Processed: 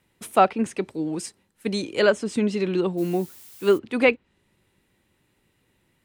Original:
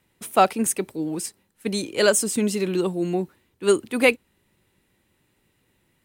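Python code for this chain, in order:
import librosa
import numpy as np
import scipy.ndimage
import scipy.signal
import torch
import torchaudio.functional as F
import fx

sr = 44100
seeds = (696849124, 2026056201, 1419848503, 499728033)

y = fx.env_lowpass_down(x, sr, base_hz=2900.0, full_db=-17.0)
y = fx.high_shelf(y, sr, hz=9500.0, db=-4.0)
y = fx.dmg_noise_colour(y, sr, seeds[0], colour='blue', level_db=-47.0, at=(2.97, 3.77), fade=0.02)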